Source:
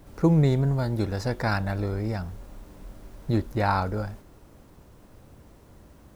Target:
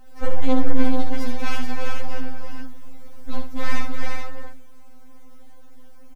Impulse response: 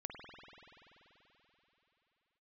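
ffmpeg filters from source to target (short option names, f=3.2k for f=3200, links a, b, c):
-filter_complex "[0:a]aeval=exprs='abs(val(0))':c=same,asplit=2[a][b];[b]aecho=0:1:65|336|432:0.447|0.501|0.562[c];[a][c]amix=inputs=2:normalize=0,afftfilt=real='re*3.46*eq(mod(b,12),0)':imag='im*3.46*eq(mod(b,12),0)':win_size=2048:overlap=0.75,volume=1.5dB"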